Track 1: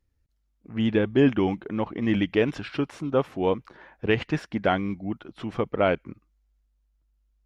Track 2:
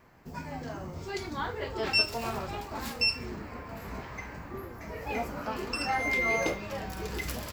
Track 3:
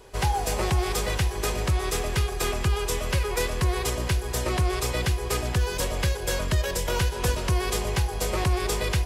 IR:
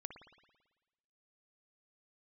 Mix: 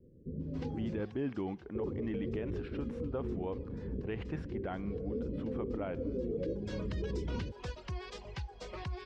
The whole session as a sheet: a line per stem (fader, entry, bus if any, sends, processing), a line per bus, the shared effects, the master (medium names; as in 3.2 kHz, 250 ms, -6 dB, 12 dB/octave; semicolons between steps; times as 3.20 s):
-12.0 dB, 0.00 s, send -12.5 dB, treble shelf 2.7 kHz -12 dB
+2.5 dB, 0.00 s, muted 1.01–1.75 s, no send, steep low-pass 530 Hz 96 dB/octave
-15.0 dB, 0.40 s, no send, low-pass 5.3 kHz 24 dB/octave; reverb removal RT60 1.5 s; auto duck -20 dB, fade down 1.55 s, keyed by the first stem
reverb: on, RT60 1.2 s, pre-delay 55 ms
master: peak limiter -28 dBFS, peak gain reduction 10.5 dB